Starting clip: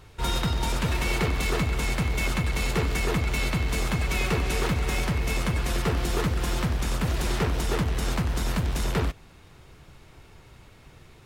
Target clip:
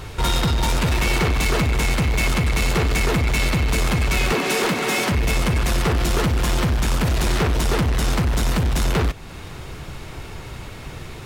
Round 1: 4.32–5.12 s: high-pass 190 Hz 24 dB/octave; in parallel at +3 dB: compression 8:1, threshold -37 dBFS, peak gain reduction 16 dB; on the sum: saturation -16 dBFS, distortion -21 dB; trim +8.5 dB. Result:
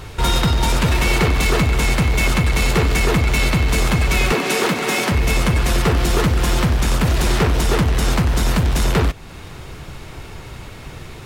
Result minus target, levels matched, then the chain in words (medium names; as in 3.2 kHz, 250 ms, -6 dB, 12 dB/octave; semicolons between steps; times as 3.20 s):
saturation: distortion -9 dB
4.32–5.12 s: high-pass 190 Hz 24 dB/octave; in parallel at +3 dB: compression 8:1, threshold -37 dBFS, peak gain reduction 16 dB; on the sum: saturation -23.5 dBFS, distortion -12 dB; trim +8.5 dB